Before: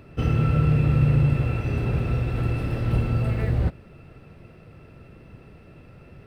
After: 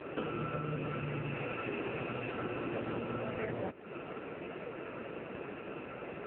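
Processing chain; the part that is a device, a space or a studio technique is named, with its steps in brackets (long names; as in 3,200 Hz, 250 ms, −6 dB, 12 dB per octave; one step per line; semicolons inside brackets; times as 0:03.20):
0:00.89–0:02.35: dynamic equaliser 2,600 Hz, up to +4 dB, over −48 dBFS, Q 0.82
voicemail (band-pass filter 350–2,700 Hz; downward compressor 10 to 1, threshold −46 dBFS, peak gain reduction 18 dB; level +14 dB; AMR narrowband 5.9 kbit/s 8,000 Hz)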